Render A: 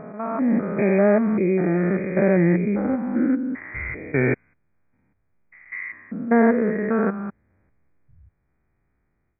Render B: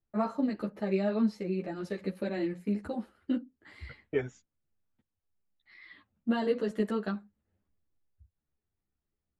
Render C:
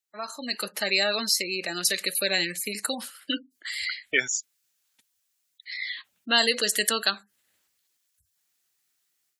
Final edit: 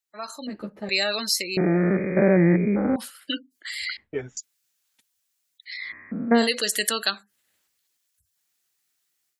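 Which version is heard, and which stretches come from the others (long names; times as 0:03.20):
C
0:00.47–0:00.89: punch in from B
0:01.57–0:02.96: punch in from A
0:03.97–0:04.37: punch in from B
0:05.85–0:06.42: punch in from A, crossfade 0.16 s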